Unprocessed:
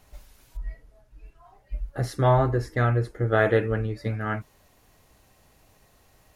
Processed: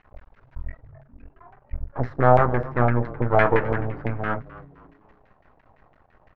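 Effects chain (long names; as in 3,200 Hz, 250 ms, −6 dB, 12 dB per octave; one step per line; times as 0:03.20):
low-pass filter 5,800 Hz
half-wave rectification
auto-filter low-pass saw down 5.9 Hz 680–2,100 Hz
on a send: echo with shifted repeats 259 ms, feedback 37%, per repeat −140 Hz, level −17 dB
on the sum: level +4.5 dB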